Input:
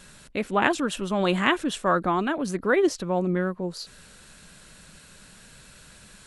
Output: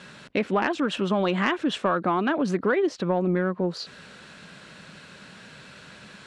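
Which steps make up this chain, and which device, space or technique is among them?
AM radio (BPF 140–3800 Hz; compressor 8:1, threshold -26 dBFS, peak gain reduction 11 dB; soft clip -17.5 dBFS, distortion -25 dB); gain +7 dB

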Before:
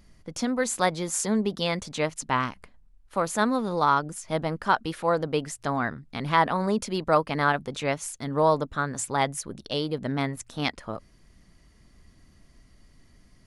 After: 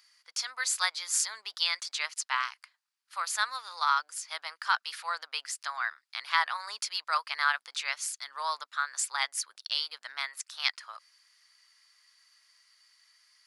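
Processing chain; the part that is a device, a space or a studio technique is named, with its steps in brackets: headphones lying on a table (HPF 1200 Hz 24 dB/oct; bell 4700 Hz +8.5 dB 0.42 oct)

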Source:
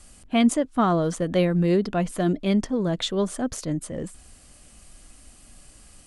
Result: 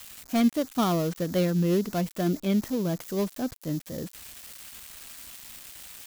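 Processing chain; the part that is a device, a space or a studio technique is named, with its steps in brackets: HPF 340 Hz 6 dB/oct; low shelf 200 Hz +11.5 dB; low shelf 240 Hz +4 dB; budget class-D amplifier (switching dead time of 0.17 ms; switching spikes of -21 dBFS); gain -5 dB

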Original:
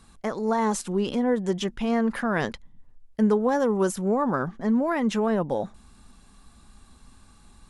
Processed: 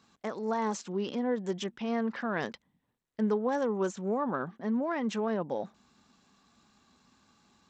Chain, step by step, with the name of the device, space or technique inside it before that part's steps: 3.37–4.91 notch 5000 Hz, Q 6.3; Bluetooth headset (HPF 170 Hz 12 dB/oct; downsampling 16000 Hz; gain -6.5 dB; SBC 64 kbps 32000 Hz)

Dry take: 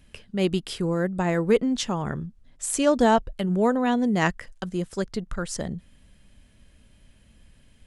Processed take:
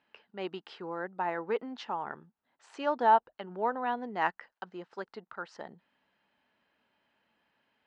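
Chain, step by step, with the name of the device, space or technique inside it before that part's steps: phone earpiece (speaker cabinet 460–3700 Hz, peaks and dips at 550 Hz -4 dB, 870 Hz +9 dB, 1400 Hz +3 dB, 2300 Hz -4 dB, 3400 Hz -7 dB); gain -7 dB

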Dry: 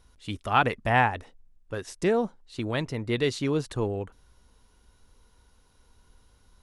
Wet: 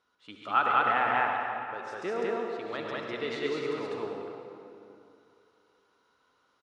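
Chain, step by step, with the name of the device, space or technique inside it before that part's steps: station announcement (BPF 320–4400 Hz; bell 1300 Hz +10.5 dB 0.26 oct; loudspeakers at several distances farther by 47 m -7 dB, 69 m 0 dB; reverb RT60 2.7 s, pre-delay 60 ms, DRR 2 dB); gain -8.5 dB

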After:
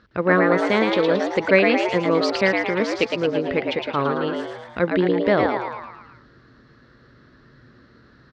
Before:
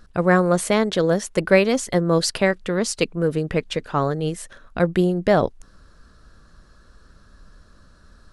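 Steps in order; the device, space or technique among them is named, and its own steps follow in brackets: frequency-shifting delay pedal into a guitar cabinet (frequency-shifting echo 0.111 s, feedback 53%, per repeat +110 Hz, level -4 dB; speaker cabinet 91–4300 Hz, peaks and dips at 160 Hz -9 dB, 730 Hz -7 dB, 2100 Hz +4 dB)

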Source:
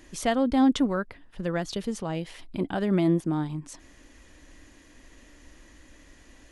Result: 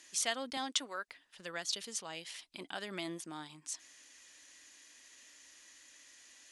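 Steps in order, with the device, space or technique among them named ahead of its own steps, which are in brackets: piezo pickup straight into a mixer (LPF 7500 Hz 12 dB/oct; differentiator); 0.57–1.08 HPF 320 Hz; gain +7 dB

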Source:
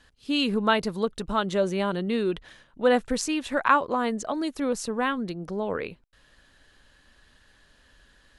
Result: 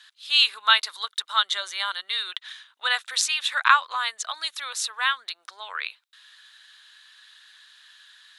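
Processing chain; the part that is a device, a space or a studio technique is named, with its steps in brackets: headphones lying on a table (HPF 1200 Hz 24 dB/oct; bell 3700 Hz +11 dB 0.35 oct); 0.88–2.33 notch 2600 Hz, Q 8.5; gain +6.5 dB

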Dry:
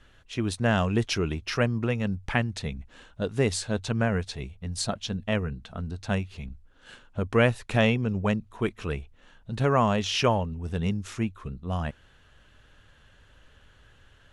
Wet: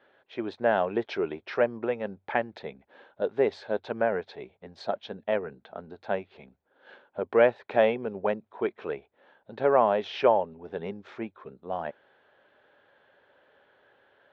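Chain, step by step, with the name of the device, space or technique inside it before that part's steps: phone earpiece (speaker cabinet 380–3100 Hz, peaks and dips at 390 Hz +5 dB, 570 Hz +6 dB, 810 Hz +5 dB, 1200 Hz -5 dB, 2000 Hz -3 dB, 2800 Hz -10 dB)

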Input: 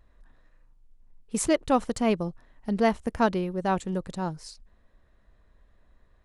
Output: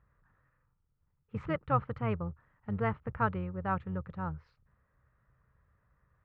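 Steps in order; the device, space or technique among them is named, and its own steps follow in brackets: sub-octave bass pedal (octaver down 1 oct, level -6 dB; speaker cabinet 62–2300 Hz, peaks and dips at 78 Hz +6 dB, 130 Hz +10 dB, 250 Hz -10 dB, 360 Hz -7 dB, 670 Hz -7 dB, 1300 Hz +9 dB); gain -6.5 dB

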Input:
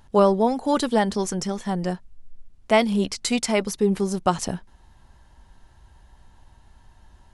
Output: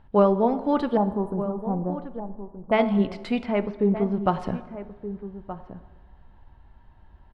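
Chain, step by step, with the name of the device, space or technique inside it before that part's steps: 0.97–2.72 elliptic band-stop 1100–9800 Hz; de-hum 108.4 Hz, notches 15; 3.43–4.24 air absorption 220 m; shout across a valley (air absorption 440 m; outdoor echo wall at 210 m, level -12 dB); plate-style reverb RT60 1.5 s, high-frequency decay 0.65×, DRR 13.5 dB

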